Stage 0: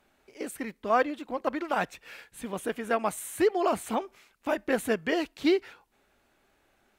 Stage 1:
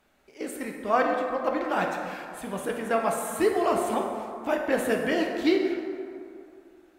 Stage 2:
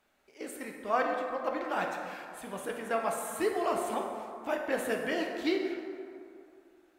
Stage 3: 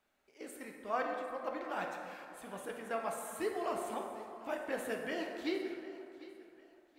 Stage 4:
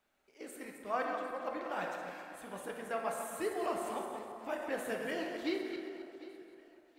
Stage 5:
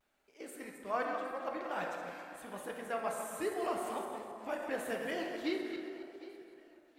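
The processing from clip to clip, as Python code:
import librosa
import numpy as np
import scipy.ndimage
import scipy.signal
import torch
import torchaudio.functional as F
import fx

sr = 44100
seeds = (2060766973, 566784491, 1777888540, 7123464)

y1 = fx.rev_plate(x, sr, seeds[0], rt60_s=2.5, hf_ratio=0.45, predelay_ms=0, drr_db=1.0)
y2 = fx.low_shelf(y1, sr, hz=300.0, db=-6.5)
y2 = F.gain(torch.from_numpy(y2), -4.5).numpy()
y3 = fx.echo_feedback(y2, sr, ms=751, feedback_pct=33, wet_db=-18)
y3 = F.gain(torch.from_numpy(y3), -6.5).numpy()
y4 = fx.reverse_delay_fb(y3, sr, ms=131, feedback_pct=46, wet_db=-7.5)
y5 = fx.vibrato(y4, sr, rate_hz=0.83, depth_cents=46.0)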